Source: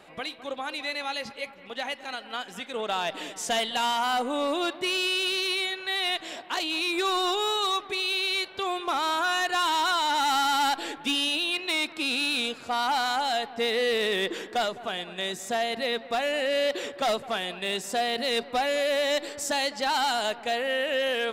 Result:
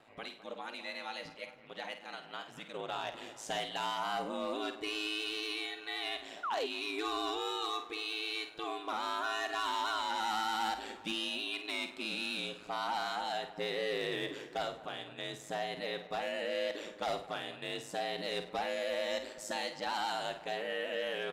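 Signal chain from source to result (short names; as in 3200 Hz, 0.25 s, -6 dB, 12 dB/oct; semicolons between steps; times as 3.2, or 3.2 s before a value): high shelf 6000 Hz -6 dB; speakerphone echo 0.33 s, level -21 dB; ring modulator 54 Hz; on a send: flutter echo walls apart 8.7 m, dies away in 0.33 s; on the sum: painted sound fall, 6.43–6.67, 360–1500 Hz -28 dBFS; gain -7 dB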